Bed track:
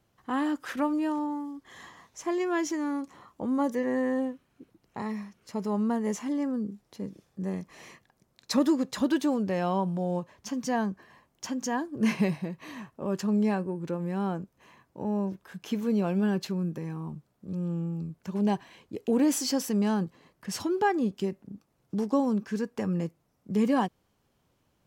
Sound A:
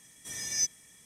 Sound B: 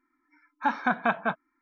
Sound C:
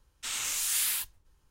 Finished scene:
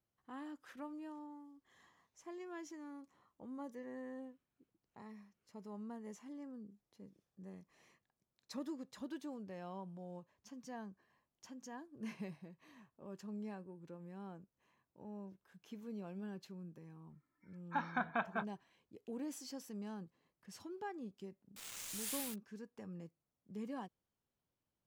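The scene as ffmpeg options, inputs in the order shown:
-filter_complex "[0:a]volume=0.1[s0];[3:a]aeval=exprs='val(0)*gte(abs(val(0)),0.0299)':c=same[s1];[2:a]atrim=end=1.61,asetpts=PTS-STARTPTS,volume=0.251,afade=t=in:d=0.004:c=hsin,afade=t=out:st=1.606:d=0.004:c=hsin,adelay=17100[s2];[s1]atrim=end=1.5,asetpts=PTS-STARTPTS,volume=0.211,afade=t=in:d=0.004:c=hsin,afade=t=out:st=1.496:d=0.004:c=hsin,adelay=940212S[s3];[s0][s2][s3]amix=inputs=3:normalize=0"

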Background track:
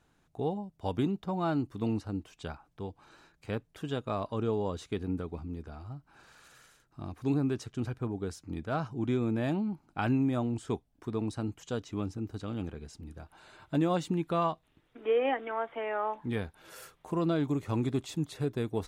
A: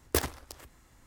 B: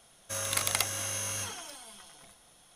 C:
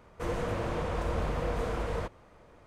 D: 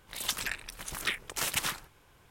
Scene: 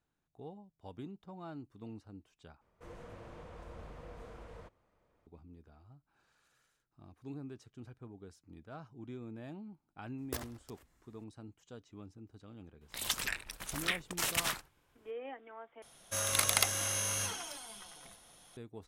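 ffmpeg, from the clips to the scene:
-filter_complex "[0:a]volume=0.158[s0];[4:a]agate=range=0.355:threshold=0.00355:ratio=16:release=100:detection=peak[s1];[s0]asplit=3[s2][s3][s4];[s2]atrim=end=2.614[s5];[3:a]atrim=end=2.66,asetpts=PTS-STARTPTS,volume=0.126[s6];[s3]atrim=start=5.266:end=15.824[s7];[2:a]atrim=end=2.75[s8];[s4]atrim=start=18.566[s9];[1:a]atrim=end=1.06,asetpts=PTS-STARTPTS,volume=0.237,afade=t=in:d=0.004:c=hsin,afade=t=out:st=1.056:d=0.004:c=hsin,adelay=448938S[s10];[s1]atrim=end=2.3,asetpts=PTS-STARTPTS,volume=0.794,afade=t=in:d=0.004:c=hsin,afade=t=out:st=2.296:d=0.004:c=hsin,adelay=12810[s11];[s5][s6]acrossfade=d=0.004:c1=hsin:c2=hsin[s12];[s12][s7]acrossfade=d=0.004:c1=hsin:c2=hsin[s13];[s13][s8]acrossfade=d=0.004:c1=hsin:c2=hsin[s14];[s14][s9]acrossfade=d=0.004:c1=hsin:c2=hsin[s15];[s15][s10][s11]amix=inputs=3:normalize=0"

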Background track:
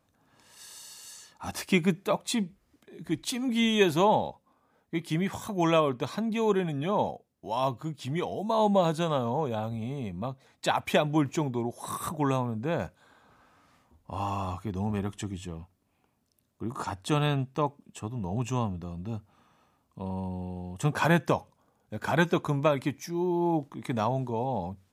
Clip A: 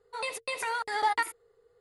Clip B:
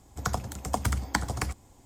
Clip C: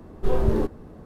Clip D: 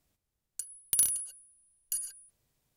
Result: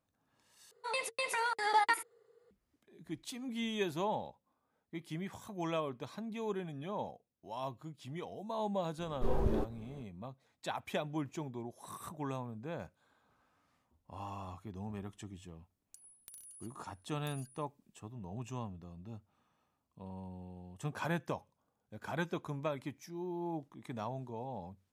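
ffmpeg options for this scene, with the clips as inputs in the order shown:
-filter_complex "[0:a]volume=0.237[s0];[1:a]highpass=f=120:w=0.5412,highpass=f=120:w=1.3066[s1];[4:a]acompressor=threshold=0.00708:ratio=6:attack=3.2:release=140:knee=1:detection=peak[s2];[s0]asplit=2[s3][s4];[s3]atrim=end=0.714[s5];[s1]atrim=end=1.8,asetpts=PTS-STARTPTS,volume=0.794[s6];[s4]atrim=start=2.506[s7];[3:a]atrim=end=1.05,asetpts=PTS-STARTPTS,volume=0.299,afade=t=in:d=0.004:c=hsin,afade=t=out:st=1.046:d=0.004:c=hsin,adelay=396018S[s8];[s2]atrim=end=2.76,asetpts=PTS-STARTPTS,volume=0.376,afade=t=in:d=0.004:c=hsin,afade=t=out:st=2.756:d=0.004:c=hsin,adelay=15350[s9];[s5][s6]acrossfade=d=0.004:c1=hsin:c2=hsin[s10];[s10][s7]acrossfade=d=0.004:c1=hsin:c2=hsin[s11];[s11][s8][s9]amix=inputs=3:normalize=0"

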